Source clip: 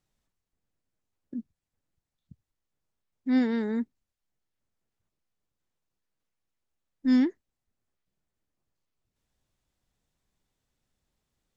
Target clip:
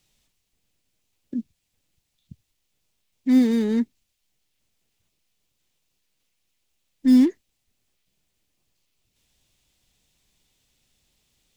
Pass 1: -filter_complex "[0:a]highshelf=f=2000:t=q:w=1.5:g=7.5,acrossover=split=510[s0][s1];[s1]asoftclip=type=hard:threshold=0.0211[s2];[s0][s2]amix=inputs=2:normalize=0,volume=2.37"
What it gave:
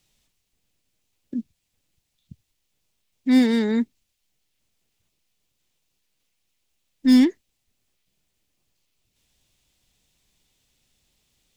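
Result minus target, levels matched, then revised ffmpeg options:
hard clipper: distortion -7 dB
-filter_complex "[0:a]highshelf=f=2000:t=q:w=1.5:g=7.5,acrossover=split=510[s0][s1];[s1]asoftclip=type=hard:threshold=0.00596[s2];[s0][s2]amix=inputs=2:normalize=0,volume=2.37"

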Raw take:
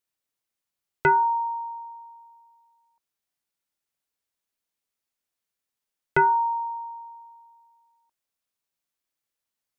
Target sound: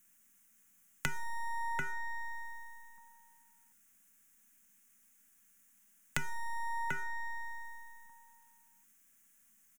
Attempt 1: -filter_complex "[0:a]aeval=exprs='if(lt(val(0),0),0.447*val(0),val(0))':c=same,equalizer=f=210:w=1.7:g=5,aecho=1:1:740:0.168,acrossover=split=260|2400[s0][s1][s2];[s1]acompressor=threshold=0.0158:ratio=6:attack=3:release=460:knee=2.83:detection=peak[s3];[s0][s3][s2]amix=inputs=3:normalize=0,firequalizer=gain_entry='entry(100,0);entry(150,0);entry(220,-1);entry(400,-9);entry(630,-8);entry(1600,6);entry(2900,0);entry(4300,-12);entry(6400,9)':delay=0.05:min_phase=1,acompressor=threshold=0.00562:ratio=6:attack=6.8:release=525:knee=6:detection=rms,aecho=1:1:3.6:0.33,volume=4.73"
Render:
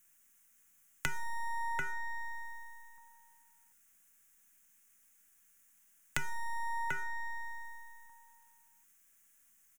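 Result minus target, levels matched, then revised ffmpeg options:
250 Hz band -4.0 dB
-filter_complex "[0:a]aeval=exprs='if(lt(val(0),0),0.447*val(0),val(0))':c=same,equalizer=f=210:w=1.7:g=13.5,aecho=1:1:740:0.168,acrossover=split=260|2400[s0][s1][s2];[s1]acompressor=threshold=0.0158:ratio=6:attack=3:release=460:knee=2.83:detection=peak[s3];[s0][s3][s2]amix=inputs=3:normalize=0,firequalizer=gain_entry='entry(100,0);entry(150,0);entry(220,-1);entry(400,-9);entry(630,-8);entry(1600,6);entry(2900,0);entry(4300,-12);entry(6400,9)':delay=0.05:min_phase=1,acompressor=threshold=0.00562:ratio=6:attack=6.8:release=525:knee=6:detection=rms,aecho=1:1:3.6:0.33,volume=4.73"

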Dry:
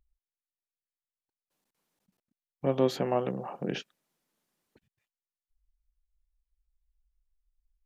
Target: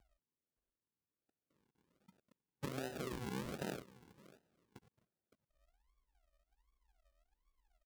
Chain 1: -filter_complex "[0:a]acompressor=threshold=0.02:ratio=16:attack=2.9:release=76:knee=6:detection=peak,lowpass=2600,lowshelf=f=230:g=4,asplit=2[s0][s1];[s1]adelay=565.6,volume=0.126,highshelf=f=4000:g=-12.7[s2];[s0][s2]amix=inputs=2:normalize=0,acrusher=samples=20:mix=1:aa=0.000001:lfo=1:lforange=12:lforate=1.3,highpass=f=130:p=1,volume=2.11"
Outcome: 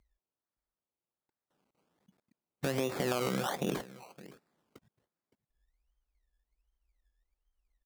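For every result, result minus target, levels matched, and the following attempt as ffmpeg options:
compression: peak gain reduction -10.5 dB; decimation with a swept rate: distortion -12 dB
-filter_complex "[0:a]acompressor=threshold=0.00562:ratio=16:attack=2.9:release=76:knee=6:detection=peak,lowpass=2600,lowshelf=f=230:g=4,asplit=2[s0][s1];[s1]adelay=565.6,volume=0.126,highshelf=f=4000:g=-12.7[s2];[s0][s2]amix=inputs=2:normalize=0,acrusher=samples=20:mix=1:aa=0.000001:lfo=1:lforange=12:lforate=1.3,highpass=f=130:p=1,volume=2.11"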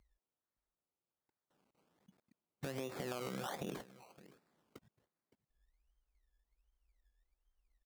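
decimation with a swept rate: distortion -12 dB
-filter_complex "[0:a]acompressor=threshold=0.00562:ratio=16:attack=2.9:release=76:knee=6:detection=peak,lowpass=2600,lowshelf=f=230:g=4,asplit=2[s0][s1];[s1]adelay=565.6,volume=0.126,highshelf=f=4000:g=-12.7[s2];[s0][s2]amix=inputs=2:normalize=0,acrusher=samples=56:mix=1:aa=0.000001:lfo=1:lforange=33.6:lforate=1.3,highpass=f=130:p=1,volume=2.11"

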